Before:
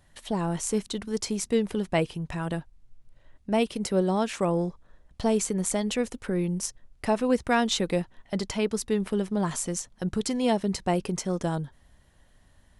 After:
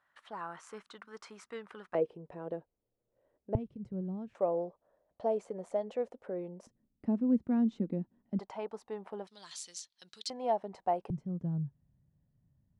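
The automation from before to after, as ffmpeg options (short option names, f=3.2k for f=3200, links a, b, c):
-af "asetnsamples=n=441:p=0,asendcmd='1.95 bandpass f 480;3.55 bandpass f 120;4.35 bandpass f 600;6.67 bandpass f 230;8.39 bandpass f 800;9.27 bandpass f 4200;10.3 bandpass f 750;11.1 bandpass f 140',bandpass=f=1.3k:t=q:w=3.1:csg=0"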